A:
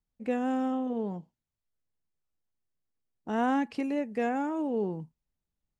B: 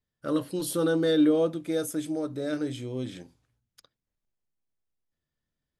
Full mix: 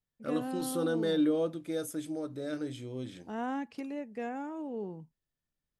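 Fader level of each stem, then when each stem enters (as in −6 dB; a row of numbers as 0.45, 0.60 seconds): −8.0, −6.0 decibels; 0.00, 0.00 seconds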